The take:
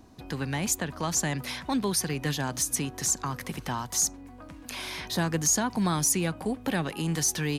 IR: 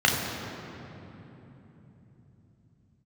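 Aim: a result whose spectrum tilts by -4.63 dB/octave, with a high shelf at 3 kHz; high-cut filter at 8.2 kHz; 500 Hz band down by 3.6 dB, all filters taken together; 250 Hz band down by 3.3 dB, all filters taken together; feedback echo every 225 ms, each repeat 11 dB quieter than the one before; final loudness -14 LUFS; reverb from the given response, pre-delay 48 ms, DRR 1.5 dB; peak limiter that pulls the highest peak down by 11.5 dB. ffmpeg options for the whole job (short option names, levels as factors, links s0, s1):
-filter_complex "[0:a]lowpass=8200,equalizer=f=250:t=o:g=-4,equalizer=f=500:t=o:g=-3,highshelf=f=3000:g=-9,alimiter=level_in=1.68:limit=0.0631:level=0:latency=1,volume=0.596,aecho=1:1:225|450|675:0.282|0.0789|0.0221,asplit=2[s0][s1];[1:a]atrim=start_sample=2205,adelay=48[s2];[s1][s2]afir=irnorm=-1:irlink=0,volume=0.112[s3];[s0][s3]amix=inputs=2:normalize=0,volume=10.6"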